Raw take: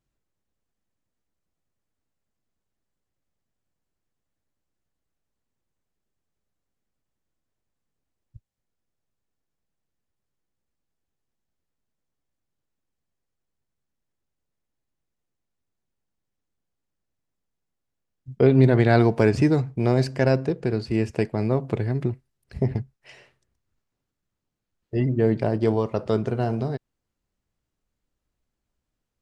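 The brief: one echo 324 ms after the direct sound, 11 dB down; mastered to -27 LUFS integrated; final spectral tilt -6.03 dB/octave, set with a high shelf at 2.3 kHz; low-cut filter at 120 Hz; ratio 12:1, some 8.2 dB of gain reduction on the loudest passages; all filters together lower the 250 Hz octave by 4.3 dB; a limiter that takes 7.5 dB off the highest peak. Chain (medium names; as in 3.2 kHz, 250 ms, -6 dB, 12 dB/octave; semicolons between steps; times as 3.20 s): high-pass 120 Hz; peaking EQ 250 Hz -5.5 dB; treble shelf 2.3 kHz +7.5 dB; compression 12:1, threshold -22 dBFS; peak limiter -18 dBFS; delay 324 ms -11 dB; trim +4 dB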